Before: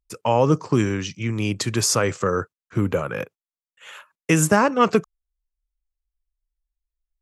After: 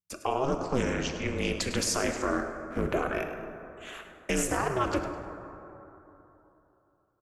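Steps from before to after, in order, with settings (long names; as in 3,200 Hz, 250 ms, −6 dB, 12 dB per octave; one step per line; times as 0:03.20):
0:02.30–0:02.89: running median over 9 samples
high-pass filter 250 Hz 6 dB per octave
brickwall limiter −15.5 dBFS, peak gain reduction 10.5 dB
ring modulation 130 Hz
echo with shifted repeats 103 ms, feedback 31%, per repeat +88 Hz, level −13 dB
dense smooth reverb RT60 3.3 s, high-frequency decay 0.35×, DRR 6.5 dB
highs frequency-modulated by the lows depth 0.15 ms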